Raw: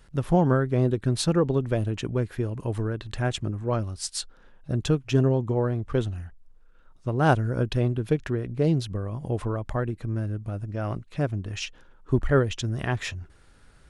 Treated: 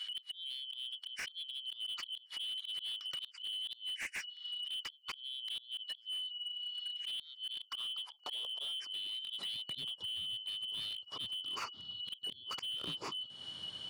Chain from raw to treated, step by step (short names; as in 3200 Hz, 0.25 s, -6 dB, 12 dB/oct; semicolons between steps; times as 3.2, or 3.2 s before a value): four-band scrambler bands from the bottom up 2413; high-pass sweep 2000 Hz -> 100 Hz, 7.34–9.93; flipped gate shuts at -11 dBFS, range -27 dB; auto swell 0.151 s; LPF 3800 Hz 6 dB/oct; low shelf 480 Hz -5.5 dB; compressor 6:1, threshold -49 dBFS, peak gain reduction 24 dB; slew limiter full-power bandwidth 12 Hz; gain +10.5 dB